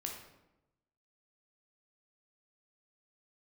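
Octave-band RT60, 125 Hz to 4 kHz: 1.2, 1.1, 1.0, 0.90, 0.75, 0.60 s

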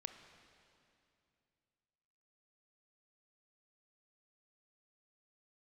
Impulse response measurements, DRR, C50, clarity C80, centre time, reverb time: 7.5 dB, 8.0 dB, 9.0 dB, 33 ms, 2.6 s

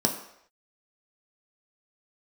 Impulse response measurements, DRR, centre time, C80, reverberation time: 1.5 dB, 19 ms, 11.0 dB, not exponential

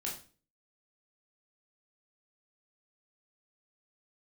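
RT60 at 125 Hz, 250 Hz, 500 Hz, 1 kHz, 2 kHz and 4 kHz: 0.55, 0.50, 0.40, 0.35, 0.35, 0.35 s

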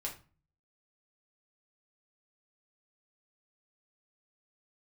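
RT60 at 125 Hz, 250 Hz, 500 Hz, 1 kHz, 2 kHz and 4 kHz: 0.70, 0.55, 0.35, 0.35, 0.30, 0.25 s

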